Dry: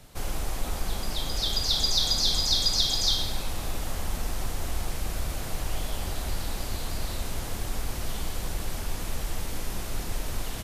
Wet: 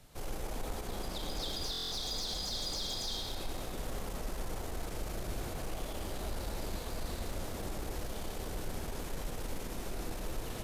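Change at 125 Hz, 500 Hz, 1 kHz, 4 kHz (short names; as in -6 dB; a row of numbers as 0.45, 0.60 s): -8.5, -2.5, -6.0, -12.5 dB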